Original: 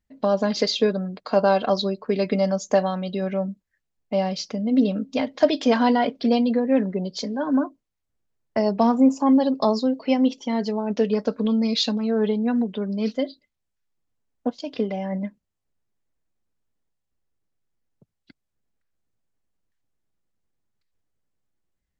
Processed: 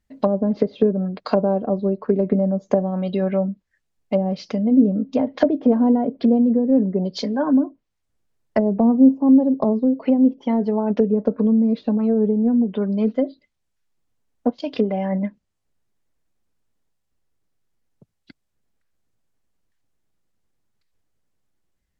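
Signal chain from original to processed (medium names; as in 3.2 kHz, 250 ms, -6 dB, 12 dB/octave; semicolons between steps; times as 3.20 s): low-pass that closes with the level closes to 420 Hz, closed at -18 dBFS; trim +5 dB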